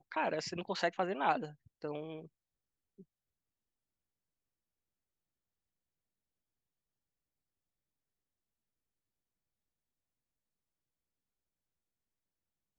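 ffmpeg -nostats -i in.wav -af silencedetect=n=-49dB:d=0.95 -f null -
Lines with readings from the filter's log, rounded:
silence_start: 3.01
silence_end: 12.79 | silence_duration: 9.78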